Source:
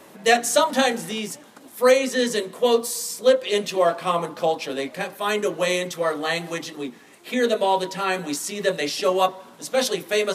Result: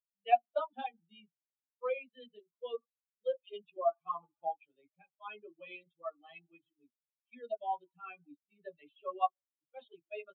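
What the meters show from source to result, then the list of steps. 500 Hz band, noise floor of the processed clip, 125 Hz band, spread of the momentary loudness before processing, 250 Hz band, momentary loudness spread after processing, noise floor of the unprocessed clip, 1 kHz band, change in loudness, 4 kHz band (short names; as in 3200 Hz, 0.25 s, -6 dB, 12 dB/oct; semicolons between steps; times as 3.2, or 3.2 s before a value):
-18.5 dB, under -85 dBFS, under -35 dB, 11 LU, -31.5 dB, 20 LU, -48 dBFS, -11.5 dB, -16.0 dB, -29.0 dB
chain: per-bin expansion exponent 3; downsampling 8000 Hz; vowel filter a; gain -1.5 dB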